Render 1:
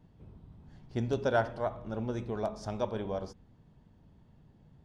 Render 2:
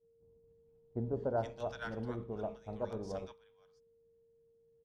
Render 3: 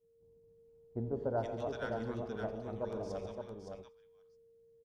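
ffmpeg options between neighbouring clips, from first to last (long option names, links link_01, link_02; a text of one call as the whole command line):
ffmpeg -i in.wav -filter_complex "[0:a]acrossover=split=1100[link_01][link_02];[link_02]adelay=470[link_03];[link_01][link_03]amix=inputs=2:normalize=0,aeval=exprs='val(0)+0.00794*sin(2*PI*460*n/s)':channel_layout=same,agate=range=-33dB:threshold=-33dB:ratio=3:detection=peak,volume=-5dB" out.wav
ffmpeg -i in.wav -af "aecho=1:1:87|141|233|565:0.15|0.282|0.188|0.531,volume=-1dB" out.wav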